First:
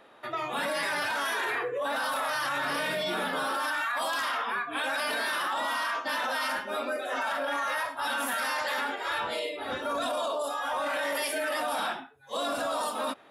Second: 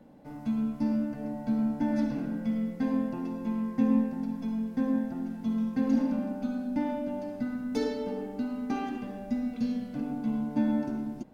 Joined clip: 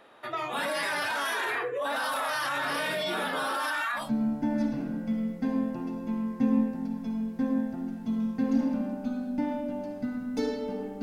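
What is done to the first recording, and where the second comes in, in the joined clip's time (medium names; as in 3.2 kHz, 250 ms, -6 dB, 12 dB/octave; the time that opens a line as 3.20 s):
first
4.02 s: go over to second from 1.40 s, crossfade 0.18 s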